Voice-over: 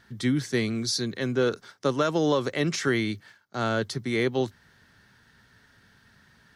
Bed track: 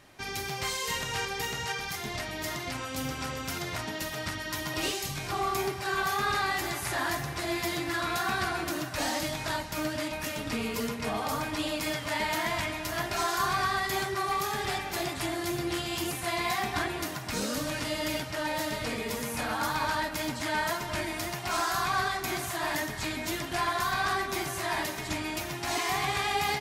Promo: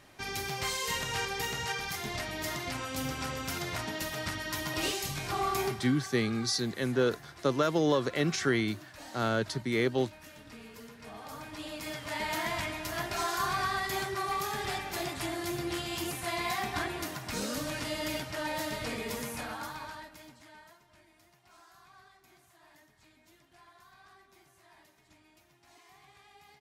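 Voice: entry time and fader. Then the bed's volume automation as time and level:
5.60 s, -3.0 dB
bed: 5.70 s -1 dB
5.99 s -17 dB
10.88 s -17 dB
12.36 s -3 dB
19.22 s -3 dB
20.87 s -29.5 dB

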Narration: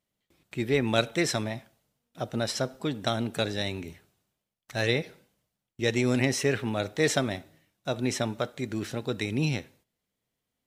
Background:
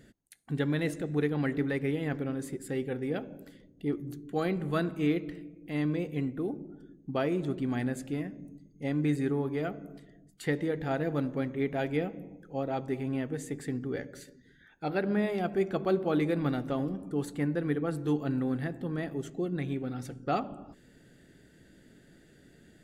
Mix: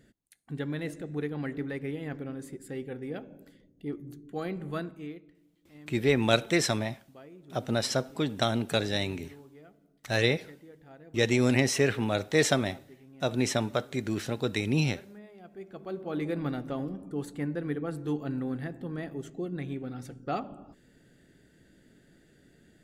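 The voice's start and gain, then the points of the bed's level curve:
5.35 s, +1.0 dB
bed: 4.77 s -4.5 dB
5.34 s -20.5 dB
15.35 s -20.5 dB
16.31 s -2.5 dB

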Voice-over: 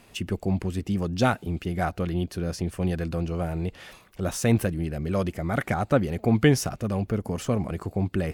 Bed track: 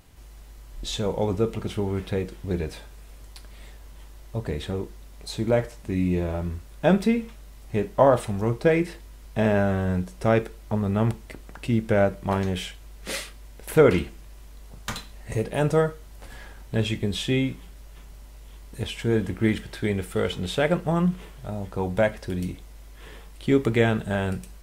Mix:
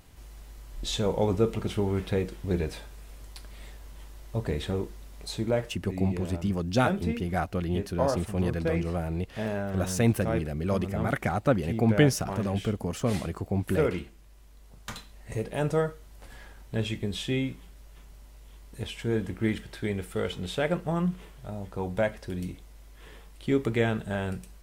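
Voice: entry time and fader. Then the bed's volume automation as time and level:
5.55 s, -2.0 dB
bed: 5.23 s -0.5 dB
5.89 s -10 dB
14.10 s -10 dB
15.49 s -5 dB

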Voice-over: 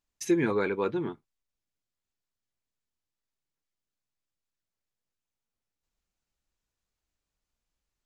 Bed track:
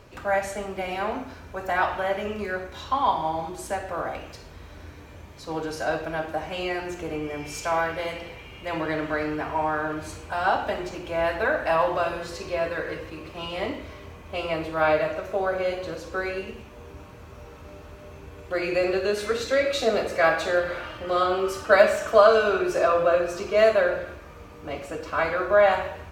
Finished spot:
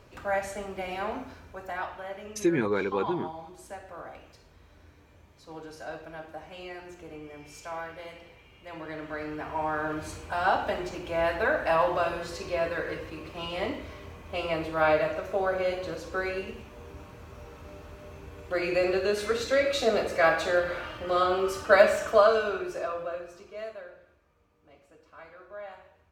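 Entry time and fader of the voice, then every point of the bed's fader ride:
2.15 s, 0.0 dB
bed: 1.28 s -4.5 dB
1.94 s -12.5 dB
8.75 s -12.5 dB
9.95 s -2 dB
22.02 s -2 dB
23.95 s -24 dB

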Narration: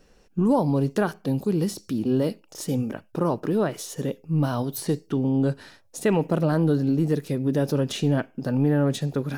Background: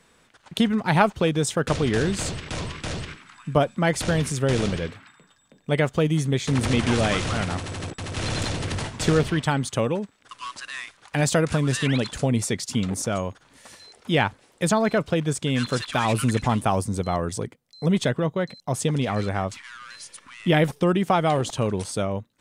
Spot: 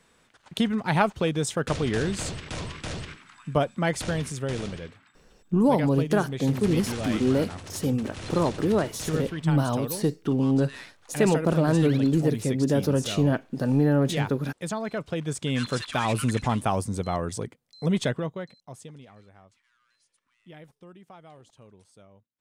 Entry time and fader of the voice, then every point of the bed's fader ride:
5.15 s, 0.0 dB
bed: 3.85 s -3.5 dB
4.84 s -10 dB
14.89 s -10 dB
15.50 s -3 dB
18.09 s -3 dB
19.22 s -28 dB

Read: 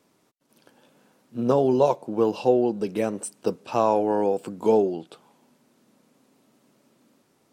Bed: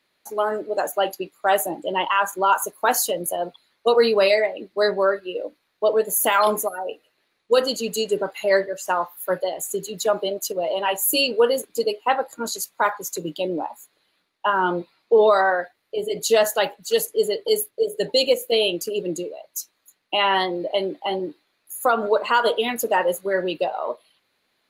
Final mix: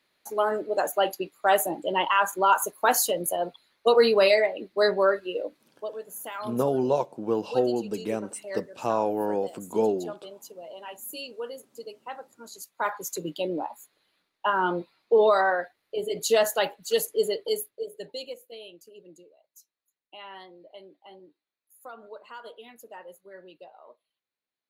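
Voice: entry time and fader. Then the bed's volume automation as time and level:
5.10 s, -4.5 dB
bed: 5.66 s -2 dB
5.91 s -18 dB
12.45 s -18 dB
12.97 s -4 dB
17.32 s -4 dB
18.57 s -24 dB

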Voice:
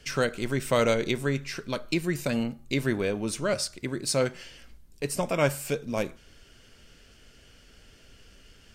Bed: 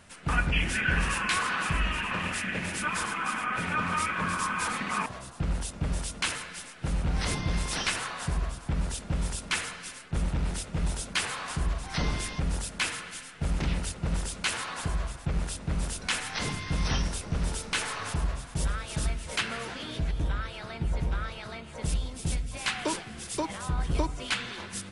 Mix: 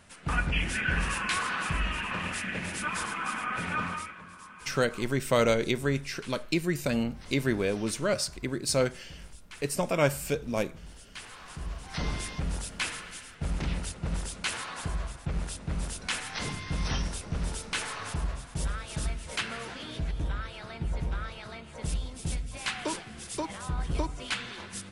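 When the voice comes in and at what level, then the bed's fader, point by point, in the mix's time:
4.60 s, -0.5 dB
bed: 3.84 s -2 dB
4.24 s -18.5 dB
10.92 s -18.5 dB
12.09 s -2.5 dB

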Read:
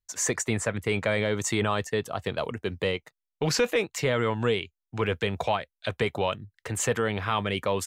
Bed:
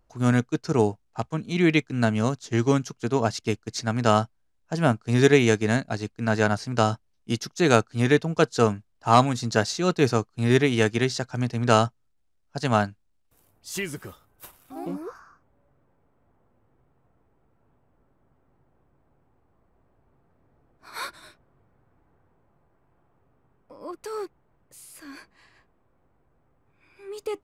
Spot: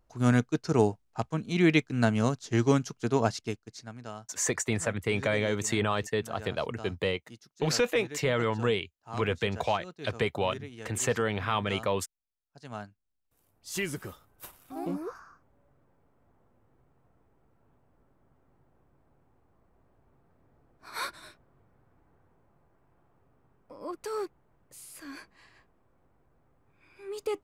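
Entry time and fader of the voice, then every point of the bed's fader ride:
4.20 s, -2.0 dB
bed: 3.26 s -2.5 dB
4.14 s -23 dB
12.50 s -23 dB
13.85 s -1 dB

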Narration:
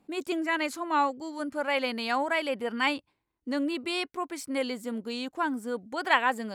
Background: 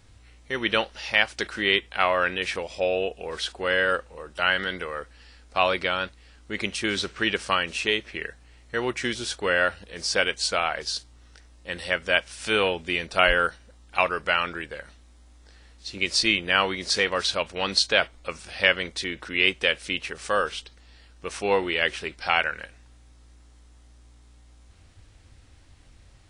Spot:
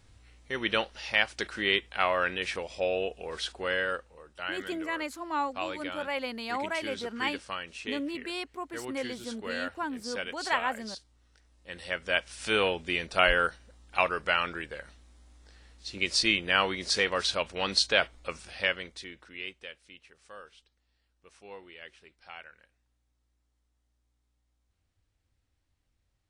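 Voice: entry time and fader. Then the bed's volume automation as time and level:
4.40 s, -5.0 dB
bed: 3.57 s -4.5 dB
4.35 s -13 dB
11.32 s -13 dB
12.39 s -3.5 dB
18.33 s -3.5 dB
19.84 s -23.5 dB

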